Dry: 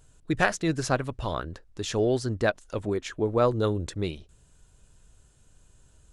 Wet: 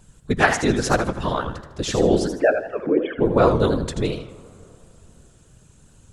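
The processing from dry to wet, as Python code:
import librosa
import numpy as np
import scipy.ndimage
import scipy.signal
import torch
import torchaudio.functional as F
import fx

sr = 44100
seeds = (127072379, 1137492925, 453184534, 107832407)

y = fx.sine_speech(x, sr, at=(2.27, 3.18))
y = fx.whisperise(y, sr, seeds[0])
y = fx.rev_plate(y, sr, seeds[1], rt60_s=3.3, hf_ratio=0.5, predelay_ms=0, drr_db=18.5)
y = fx.echo_warbled(y, sr, ms=80, feedback_pct=33, rate_hz=2.8, cents=157, wet_db=-8.0)
y = y * 10.0 ** (6.0 / 20.0)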